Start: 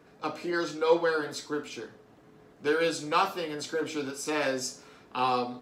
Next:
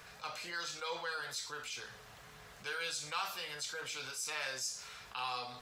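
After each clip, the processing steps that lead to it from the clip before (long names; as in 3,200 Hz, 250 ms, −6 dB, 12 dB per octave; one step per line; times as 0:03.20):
guitar amp tone stack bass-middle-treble 10-0-10
envelope flattener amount 50%
level −5.5 dB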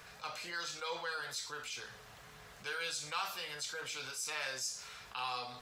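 no processing that can be heard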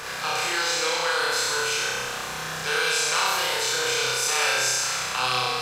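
compressor on every frequency bin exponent 0.6
flutter between parallel walls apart 5.4 metres, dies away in 1.4 s
level +7.5 dB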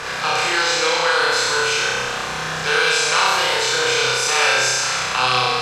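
high-frequency loss of the air 56 metres
level +7.5 dB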